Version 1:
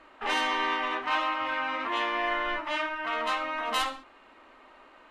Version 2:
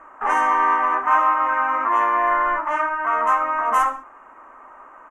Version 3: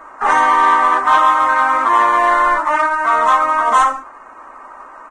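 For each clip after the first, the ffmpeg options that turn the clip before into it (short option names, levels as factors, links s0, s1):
-af "firequalizer=gain_entry='entry(360,0);entry(1100,12);entry(4100,-29);entry(6100,0)':delay=0.05:min_phase=1,volume=1.33"
-af "acrusher=bits=7:mode=log:mix=0:aa=0.000001,acontrast=84" -ar 22050 -c:a libvorbis -b:a 16k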